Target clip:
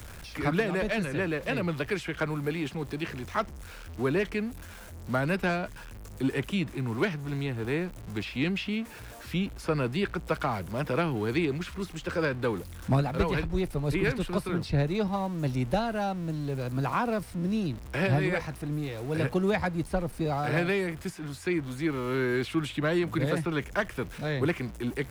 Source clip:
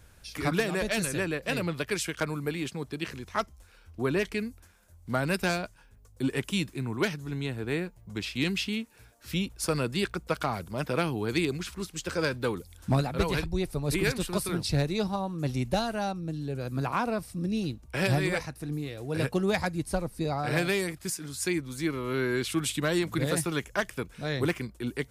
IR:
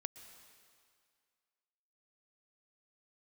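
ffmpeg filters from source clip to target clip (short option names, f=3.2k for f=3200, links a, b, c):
-filter_complex "[0:a]aeval=exprs='val(0)+0.5*0.0112*sgn(val(0))':c=same,acrossover=split=130|500|3100[a][b][c][d];[d]acompressor=threshold=-50dB:ratio=6[e];[a][b][c][e]amix=inputs=4:normalize=0"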